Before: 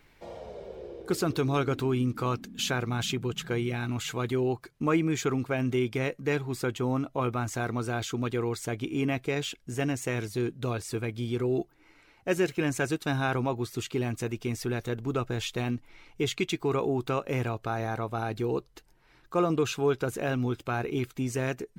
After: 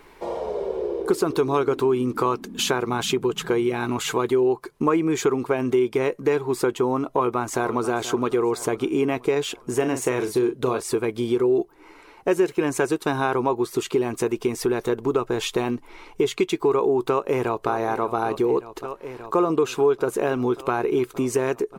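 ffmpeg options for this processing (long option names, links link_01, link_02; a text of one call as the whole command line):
ffmpeg -i in.wav -filter_complex "[0:a]asplit=2[link_01][link_02];[link_02]afade=type=in:start_time=7.05:duration=0.01,afade=type=out:start_time=7.87:duration=0.01,aecho=0:1:480|960|1440|1920|2400:0.16788|0.0839402|0.0419701|0.0209851|0.0104925[link_03];[link_01][link_03]amix=inputs=2:normalize=0,asettb=1/sr,asplit=3[link_04][link_05][link_06];[link_04]atrim=end=9.764[link_07];[link_05]atrim=start=9.76:end=10.8,asetpts=PTS-STARTPTS,afade=type=in:duration=0.004:curve=qsin,afade=type=out:start_time=1.036:duration=0.004:curve=qsin,asplit=2[link_08][link_09];[link_09]adelay=39,volume=-9dB[link_10];[link_08][link_10]amix=inputs=2:normalize=0,atrim=end_sample=45864[link_11];[link_06]atrim=start=10.796[link_12];[link_07][link_11]acrossfade=duration=0.004:curve1=hsin:curve2=qsin[link_13];[link_13][link_12]acrossfade=duration=0.004:curve1=qsin:curve2=hsin,asplit=2[link_14][link_15];[link_15]afade=type=in:start_time=17.08:duration=0.01,afade=type=out:start_time=17.7:duration=0.01,aecho=0:1:580|1160|1740|2320|2900|3480|4060|4640|5220|5800|6380|6960:0.188365|0.150692|0.120554|0.0964428|0.0771543|0.0617234|0.0493787|0.039503|0.0316024|0.0252819|0.0202255|0.0161804[link_16];[link_14][link_16]amix=inputs=2:normalize=0,equalizer=frequency=100:width_type=o:width=0.67:gain=-10,equalizer=frequency=400:width_type=o:width=0.67:gain=11,equalizer=frequency=1000:width_type=o:width=0.67:gain=11,equalizer=frequency=10000:width_type=o:width=0.67:gain=5,acompressor=threshold=-28dB:ratio=2.5,volume=7dB" out.wav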